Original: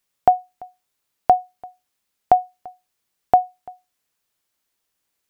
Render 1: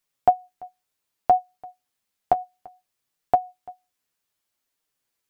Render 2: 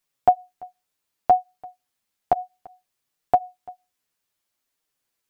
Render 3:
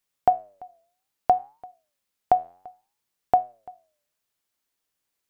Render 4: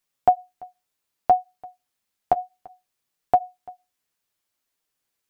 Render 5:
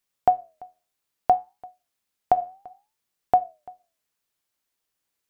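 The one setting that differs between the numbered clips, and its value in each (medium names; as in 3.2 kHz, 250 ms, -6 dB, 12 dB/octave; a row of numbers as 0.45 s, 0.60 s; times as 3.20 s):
flange, regen: +30%, +2%, +88%, -24%, -82%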